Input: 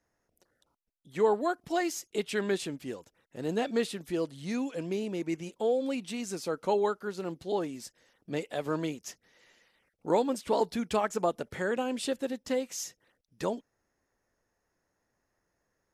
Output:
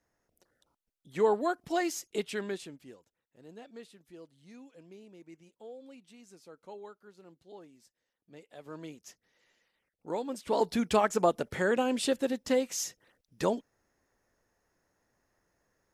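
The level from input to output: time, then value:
0:02.14 −0.5 dB
0:02.74 −10.5 dB
0:03.42 −19 dB
0:08.35 −19 dB
0:09.01 −8.5 dB
0:10.20 −8.5 dB
0:10.75 +3 dB

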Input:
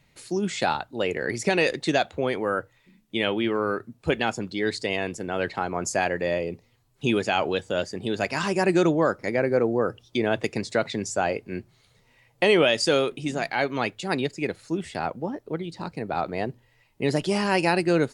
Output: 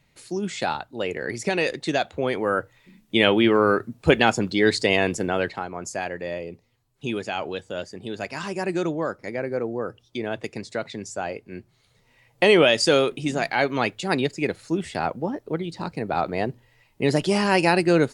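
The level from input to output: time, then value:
0:01.88 −1.5 dB
0:03.16 +7 dB
0:05.24 +7 dB
0:05.69 −5 dB
0:11.51 −5 dB
0:12.46 +3 dB

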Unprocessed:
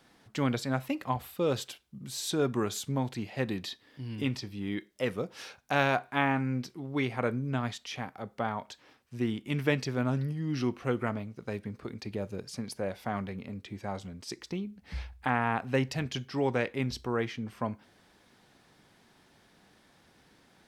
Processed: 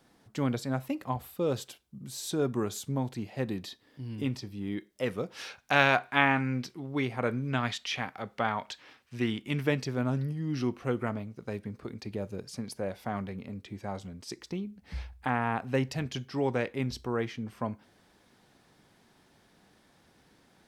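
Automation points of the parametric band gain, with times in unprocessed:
parametric band 2,500 Hz 2.5 octaves
0:04.77 −5.5 dB
0:05.63 +6.5 dB
0:06.46 +6.5 dB
0:07.17 −3 dB
0:07.40 +7.5 dB
0:09.27 +7.5 dB
0:09.71 −2.5 dB

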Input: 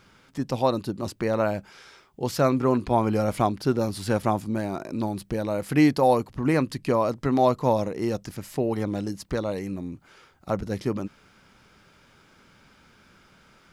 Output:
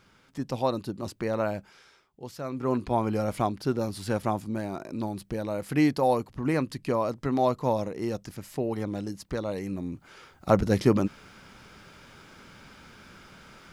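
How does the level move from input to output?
0:01.57 −4 dB
0:02.43 −15 dB
0:02.72 −4 dB
0:09.38 −4 dB
0:10.54 +6 dB

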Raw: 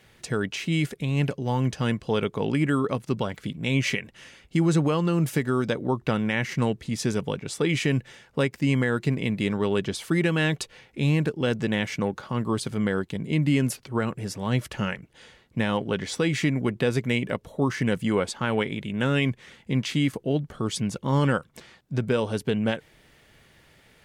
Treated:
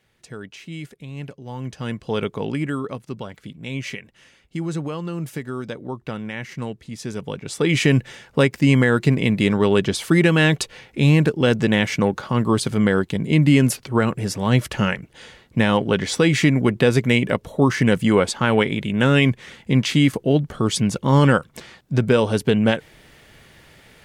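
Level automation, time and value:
0:01.42 −9 dB
0:02.22 +2 dB
0:03.10 −5 dB
0:07.03 −5 dB
0:07.83 +7.5 dB

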